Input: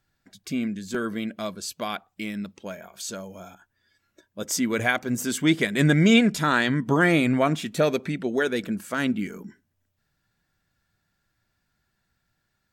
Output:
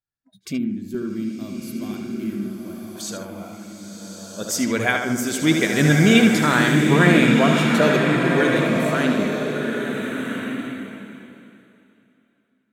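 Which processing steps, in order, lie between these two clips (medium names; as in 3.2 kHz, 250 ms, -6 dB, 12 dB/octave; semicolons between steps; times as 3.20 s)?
tape echo 76 ms, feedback 60%, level -5 dB, low-pass 5.3 kHz; spectral noise reduction 25 dB; time-frequency box 0.58–2.96 s, 400–10000 Hz -15 dB; swelling reverb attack 1420 ms, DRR 2 dB; trim +2 dB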